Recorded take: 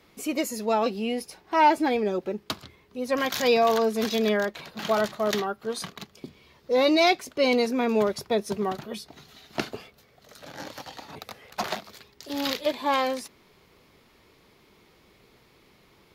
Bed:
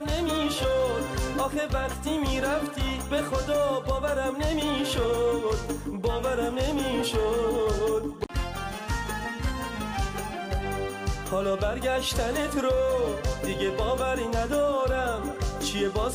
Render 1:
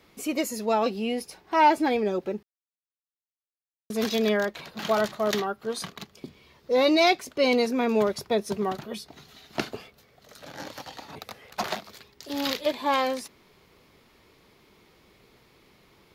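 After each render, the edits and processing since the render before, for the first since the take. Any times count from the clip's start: 2.43–3.90 s: mute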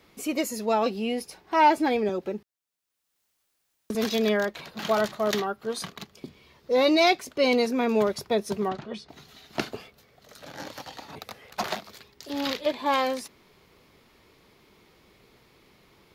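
2.09–3.95 s: three bands compressed up and down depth 70%; 8.68–9.09 s: distance through air 110 m; 12.30–12.86 s: treble shelf 6.5 kHz -8 dB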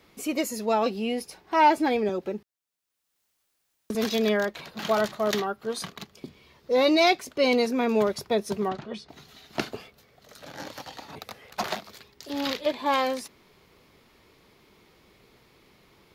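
no audible change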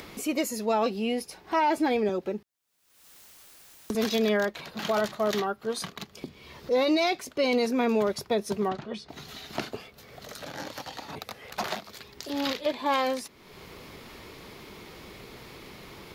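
upward compressor, threshold -33 dBFS; peak limiter -16.5 dBFS, peak gain reduction 7.5 dB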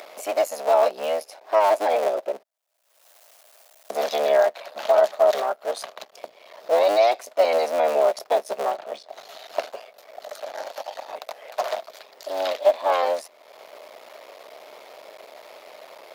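cycle switcher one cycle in 3, muted; resonant high-pass 620 Hz, resonance Q 5.9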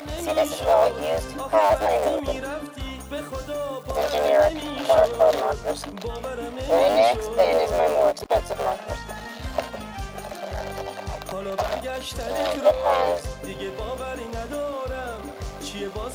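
add bed -4.5 dB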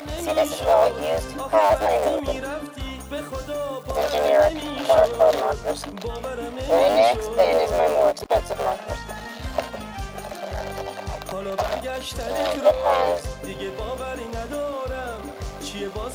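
trim +1 dB

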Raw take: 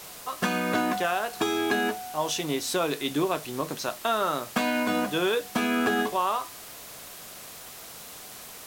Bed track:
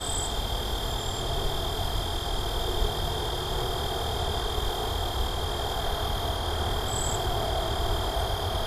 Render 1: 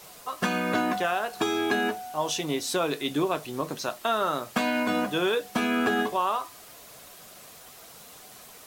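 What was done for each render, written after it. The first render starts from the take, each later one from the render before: noise reduction 6 dB, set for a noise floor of -44 dBFS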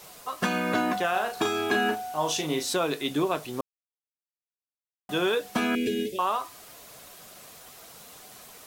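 1.10–2.74 s: doubling 38 ms -6 dB; 3.61–5.09 s: mute; 5.75–6.19 s: elliptic band-stop 470–2200 Hz, stop band 60 dB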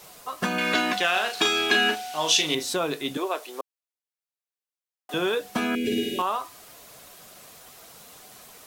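0.58–2.55 s: frequency weighting D; 3.17–5.14 s: high-pass 380 Hz 24 dB/octave; 5.79–6.22 s: flutter echo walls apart 9.3 m, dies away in 1.5 s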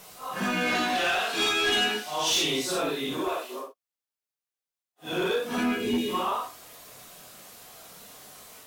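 phase randomisation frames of 200 ms; saturation -19.5 dBFS, distortion -14 dB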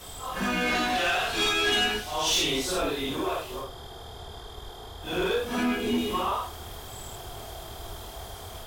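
add bed track -13 dB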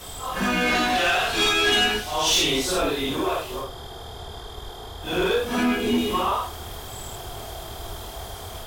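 trim +4.5 dB

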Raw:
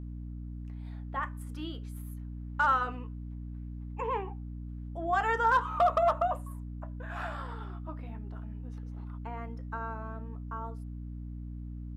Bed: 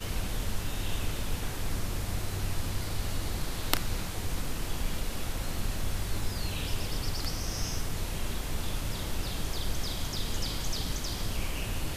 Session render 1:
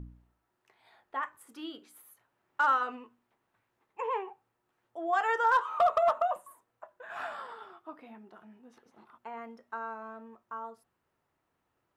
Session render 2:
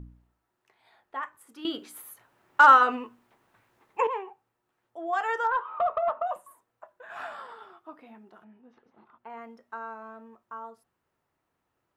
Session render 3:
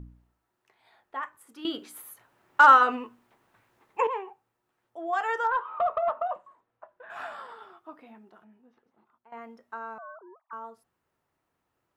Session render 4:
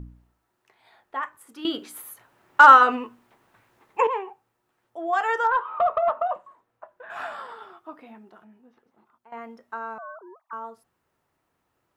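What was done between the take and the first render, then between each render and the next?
de-hum 60 Hz, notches 5
1.65–4.07 s: gain +11 dB; 5.47–6.27 s: distance through air 420 m; 8.44–9.30 s: distance through air 230 m
6.27–7.10 s: Gaussian low-pass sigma 2.1 samples; 8.03–9.32 s: fade out, to -15 dB; 9.98–10.53 s: formants replaced by sine waves
trim +4.5 dB

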